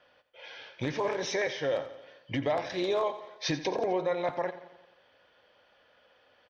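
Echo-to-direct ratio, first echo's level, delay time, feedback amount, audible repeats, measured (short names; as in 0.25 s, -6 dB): -12.5 dB, -14.0 dB, 87 ms, 57%, 5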